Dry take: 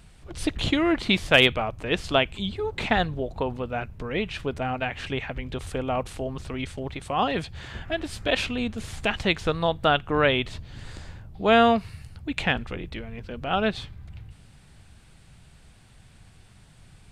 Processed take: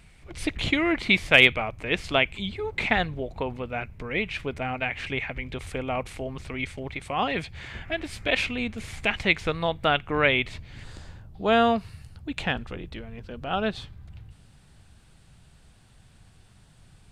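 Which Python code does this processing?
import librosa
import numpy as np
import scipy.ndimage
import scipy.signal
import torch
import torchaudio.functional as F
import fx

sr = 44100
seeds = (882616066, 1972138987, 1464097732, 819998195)

y = fx.peak_eq(x, sr, hz=2200.0, db=fx.steps((0.0, 10.0), (10.84, -3.0)), octaves=0.43)
y = y * librosa.db_to_amplitude(-2.5)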